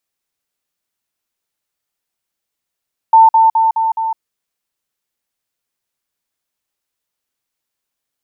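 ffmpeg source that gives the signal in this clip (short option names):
-f lavfi -i "aevalsrc='pow(10,(-3-3*floor(t/0.21))/20)*sin(2*PI*895*t)*clip(min(mod(t,0.21),0.16-mod(t,0.21))/0.005,0,1)':d=1.05:s=44100"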